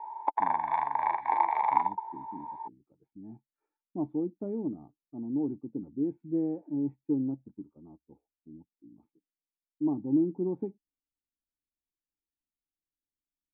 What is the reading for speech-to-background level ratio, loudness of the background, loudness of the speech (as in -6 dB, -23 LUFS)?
-4.0 dB, -29.0 LUFS, -33.0 LUFS